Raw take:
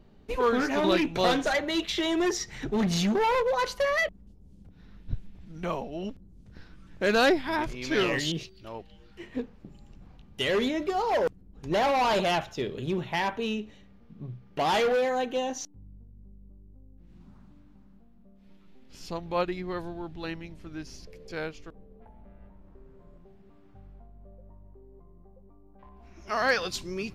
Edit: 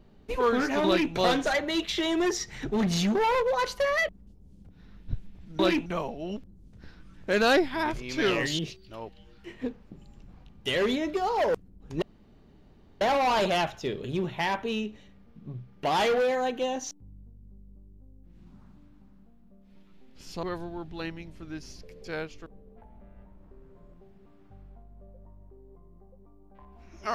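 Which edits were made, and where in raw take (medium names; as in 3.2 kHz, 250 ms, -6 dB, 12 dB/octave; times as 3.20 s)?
0.86–1.13 s: copy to 5.59 s
11.75 s: insert room tone 0.99 s
19.17–19.67 s: delete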